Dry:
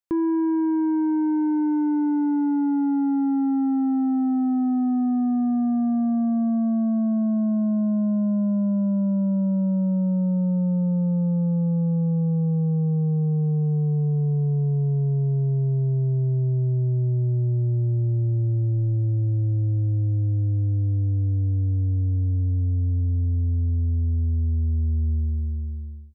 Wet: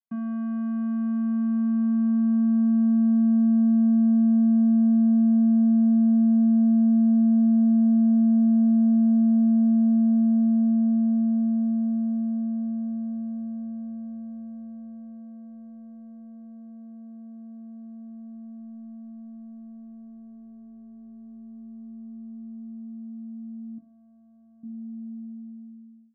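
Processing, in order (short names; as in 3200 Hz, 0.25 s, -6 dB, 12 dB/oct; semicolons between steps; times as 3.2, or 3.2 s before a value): 23.77–24.63 resonant low shelf 320 Hz -9 dB, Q 3; vocoder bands 8, square 226 Hz; notches 50/100/150/200/250/300/350/400/450 Hz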